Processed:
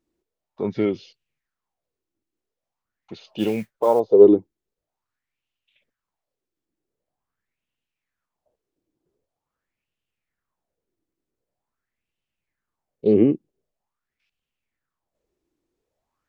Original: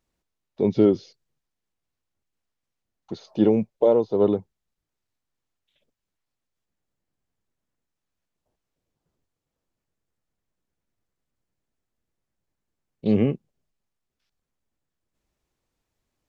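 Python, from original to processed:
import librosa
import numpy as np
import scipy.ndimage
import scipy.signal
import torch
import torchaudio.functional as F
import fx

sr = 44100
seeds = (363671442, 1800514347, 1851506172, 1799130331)

y = fx.mod_noise(x, sr, seeds[0], snr_db=27, at=(3.38, 4.0))
y = fx.bell_lfo(y, sr, hz=0.45, low_hz=310.0, high_hz=2900.0, db=18)
y = F.gain(torch.from_numpy(y), -5.0).numpy()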